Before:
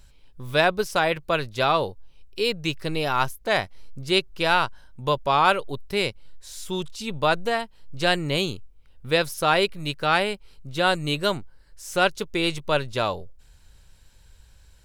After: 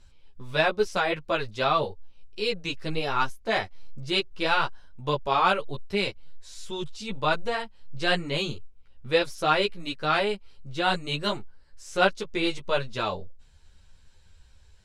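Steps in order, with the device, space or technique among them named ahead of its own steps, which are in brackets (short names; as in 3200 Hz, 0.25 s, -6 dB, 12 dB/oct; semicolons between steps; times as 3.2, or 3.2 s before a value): string-machine ensemble chorus (ensemble effect; LPF 7300 Hz 12 dB/oct)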